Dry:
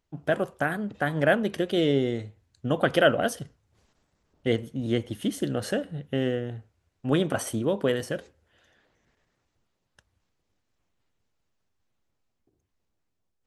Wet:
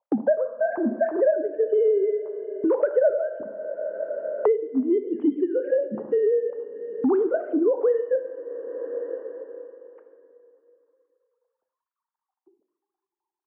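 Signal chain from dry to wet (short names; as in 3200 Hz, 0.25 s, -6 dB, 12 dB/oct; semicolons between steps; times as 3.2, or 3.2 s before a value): sine-wave speech; LPF 1100 Hz 24 dB/oct; gate with hold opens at -51 dBFS; two-slope reverb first 0.66 s, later 3 s, from -18 dB, DRR 7.5 dB; three-band squash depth 100%; gain +4.5 dB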